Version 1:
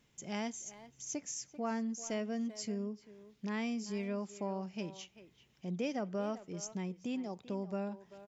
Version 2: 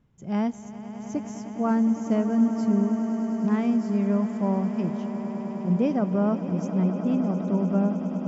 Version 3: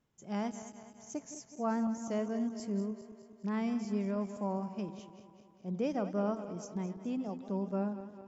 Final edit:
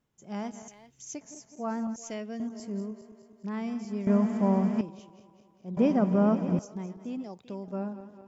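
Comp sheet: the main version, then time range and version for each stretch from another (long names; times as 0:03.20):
3
0:00.68–0:01.21: punch in from 1
0:01.96–0:02.40: punch in from 1
0:04.07–0:04.81: punch in from 2
0:05.77–0:06.59: punch in from 2
0:07.24–0:07.68: punch in from 1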